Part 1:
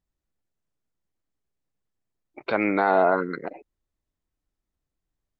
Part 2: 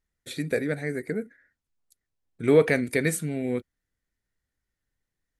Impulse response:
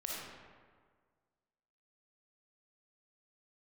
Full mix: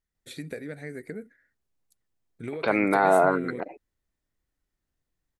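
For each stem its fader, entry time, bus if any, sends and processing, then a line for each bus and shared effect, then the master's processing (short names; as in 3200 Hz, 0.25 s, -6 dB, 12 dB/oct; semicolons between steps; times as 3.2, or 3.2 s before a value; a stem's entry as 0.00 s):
0.0 dB, 0.15 s, no send, dry
-5.0 dB, 0.00 s, no send, compressor 16:1, threshold -27 dBFS, peak gain reduction 15.5 dB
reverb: off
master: dry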